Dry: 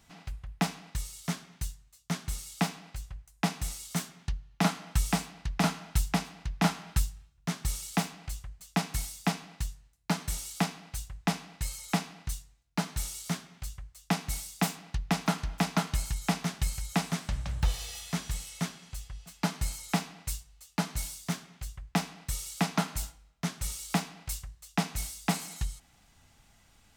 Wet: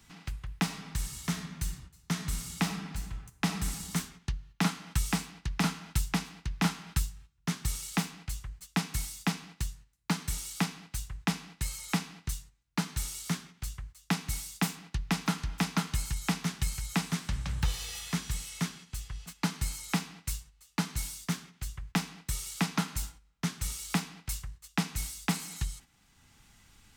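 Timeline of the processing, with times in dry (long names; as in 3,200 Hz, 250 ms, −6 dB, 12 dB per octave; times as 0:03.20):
0:00.63–0:03.71: thrown reverb, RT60 1.1 s, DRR 5 dB
whole clip: noise gate −48 dBFS, range −9 dB; parametric band 640 Hz −9.5 dB 0.65 octaves; multiband upward and downward compressor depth 40%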